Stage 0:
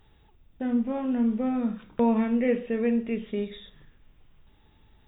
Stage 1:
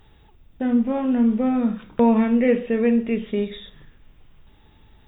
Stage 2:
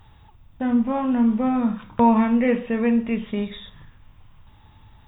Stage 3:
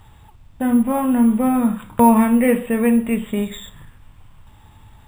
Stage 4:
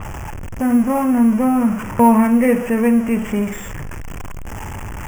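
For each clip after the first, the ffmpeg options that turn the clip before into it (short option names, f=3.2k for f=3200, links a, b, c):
-af "acontrast=59"
-af "equalizer=f=100:t=o:w=0.67:g=9,equalizer=f=400:t=o:w=0.67:g=-7,equalizer=f=1k:t=o:w=0.67:g=8"
-af "acrusher=samples=4:mix=1:aa=0.000001,volume=4dB"
-af "aeval=exprs='val(0)+0.5*0.0708*sgn(val(0))':c=same,asuperstop=centerf=4000:order=4:qfactor=1.3,adynamicequalizer=threshold=0.00891:dfrequency=4500:dqfactor=0.7:tfrequency=4500:tqfactor=0.7:attack=5:release=100:ratio=0.375:range=2:mode=cutabove:tftype=highshelf"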